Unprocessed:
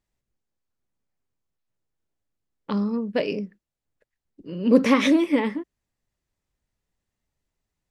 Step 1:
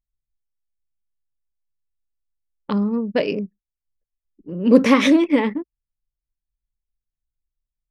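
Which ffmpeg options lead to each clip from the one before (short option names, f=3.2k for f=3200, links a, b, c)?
-af "anlmdn=6.31,volume=4dB"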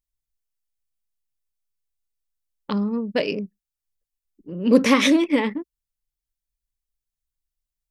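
-af "highshelf=f=3.1k:g=9,volume=-3dB"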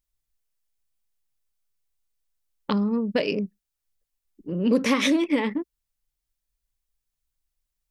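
-af "acompressor=threshold=-26dB:ratio=2.5,volume=4dB"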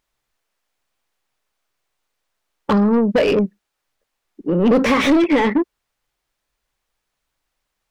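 -filter_complex "[0:a]asplit=2[a][b];[b]highpass=f=720:p=1,volume=25dB,asoftclip=type=tanh:threshold=-8.5dB[c];[a][c]amix=inputs=2:normalize=0,lowpass=f=1.1k:p=1,volume=-6dB,volume=3dB"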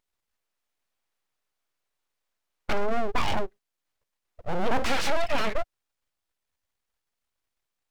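-af "aeval=exprs='abs(val(0))':c=same,volume=-6.5dB"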